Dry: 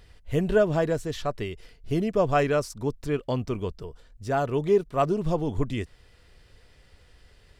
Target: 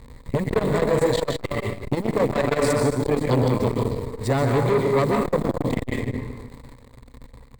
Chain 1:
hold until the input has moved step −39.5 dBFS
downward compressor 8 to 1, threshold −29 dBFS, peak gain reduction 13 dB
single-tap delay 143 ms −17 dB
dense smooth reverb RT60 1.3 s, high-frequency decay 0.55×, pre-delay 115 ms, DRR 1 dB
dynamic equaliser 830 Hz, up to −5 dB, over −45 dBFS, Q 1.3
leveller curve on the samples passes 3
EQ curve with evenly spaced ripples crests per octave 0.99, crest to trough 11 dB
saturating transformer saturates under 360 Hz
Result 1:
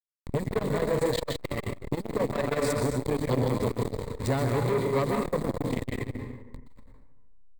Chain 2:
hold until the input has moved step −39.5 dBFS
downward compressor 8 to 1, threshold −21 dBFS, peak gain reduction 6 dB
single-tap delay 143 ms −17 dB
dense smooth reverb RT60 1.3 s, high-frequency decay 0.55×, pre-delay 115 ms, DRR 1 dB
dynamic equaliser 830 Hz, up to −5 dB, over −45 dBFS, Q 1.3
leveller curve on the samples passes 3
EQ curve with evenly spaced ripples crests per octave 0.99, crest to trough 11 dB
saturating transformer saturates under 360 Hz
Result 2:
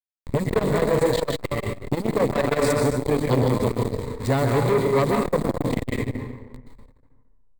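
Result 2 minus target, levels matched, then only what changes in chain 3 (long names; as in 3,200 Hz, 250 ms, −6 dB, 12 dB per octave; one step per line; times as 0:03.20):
hold until the input has moved: distortion +8 dB
change: hold until the input has moved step −47 dBFS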